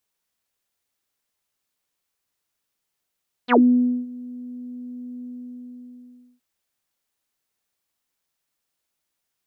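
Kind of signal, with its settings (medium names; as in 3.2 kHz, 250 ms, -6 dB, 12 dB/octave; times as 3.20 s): synth note saw B3 24 dB/octave, low-pass 300 Hz, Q 10, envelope 4 oct, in 0.10 s, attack 50 ms, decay 0.53 s, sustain -22.5 dB, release 1.16 s, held 1.76 s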